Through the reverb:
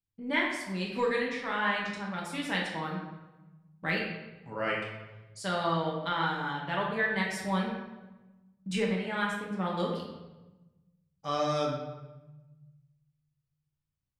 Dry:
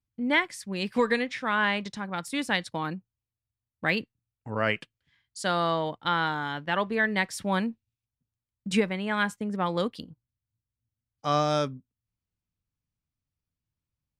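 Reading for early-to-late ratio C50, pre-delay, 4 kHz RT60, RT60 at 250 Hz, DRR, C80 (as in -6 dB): 2.5 dB, 5 ms, 0.80 s, 1.7 s, -3.5 dB, 5.0 dB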